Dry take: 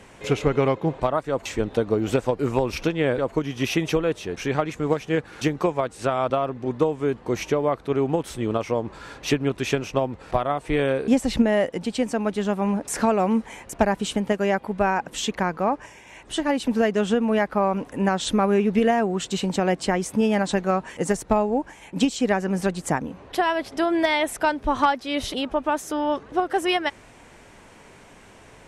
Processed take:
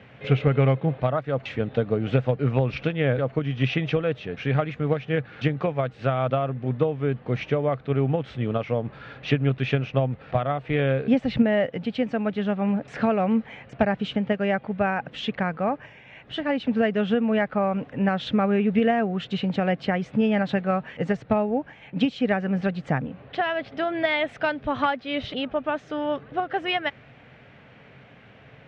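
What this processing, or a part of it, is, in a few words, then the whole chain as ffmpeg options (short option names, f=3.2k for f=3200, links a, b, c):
guitar cabinet: -filter_complex "[0:a]highpass=81,equalizer=f=130:t=q:w=4:g=10,equalizer=f=350:t=q:w=4:g=-9,equalizer=f=970:t=q:w=4:g=-10,lowpass=f=3.4k:w=0.5412,lowpass=f=3.4k:w=1.3066,asettb=1/sr,asplit=3[a][b][c];[a]atrim=end=24.294[d];[b]atrim=start=24.29:end=24.83,asetpts=PTS-STARTPTS,afade=t=in:d=0.004:c=qsin,afade=t=out:st=0.536:d=0.004:c=qsin,highshelf=f=4.5k:g=5.5[e];[c]atrim=start=24.826[f];[d][e]acrossfade=d=0.004:c1=hsin:c2=qsin[g];[g][f]acrossfade=d=0.004:c1=qsin:c2=hsin"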